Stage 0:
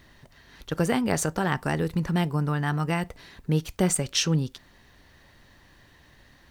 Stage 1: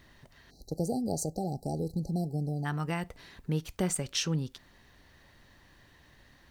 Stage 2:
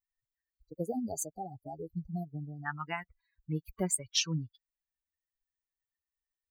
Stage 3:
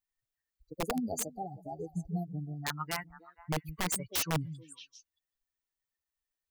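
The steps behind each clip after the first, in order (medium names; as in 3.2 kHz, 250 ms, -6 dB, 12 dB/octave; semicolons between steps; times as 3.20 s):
spectral selection erased 0.51–2.65 s, 840–3900 Hz; in parallel at -2.5 dB: compression, threshold -31 dBFS, peak gain reduction 13.5 dB; on the sum: trim -8.5 dB
expander on every frequency bin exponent 3; bass shelf 480 Hz -5.5 dB; trim +5 dB
repeats whose band climbs or falls 156 ms, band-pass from 160 Hz, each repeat 1.4 oct, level -11 dB; integer overflow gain 26 dB; trim +1.5 dB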